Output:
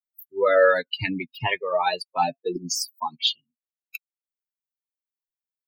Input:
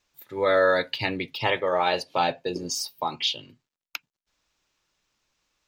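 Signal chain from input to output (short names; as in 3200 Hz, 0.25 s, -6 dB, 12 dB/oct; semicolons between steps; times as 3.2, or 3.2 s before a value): per-bin expansion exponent 3; gain +6.5 dB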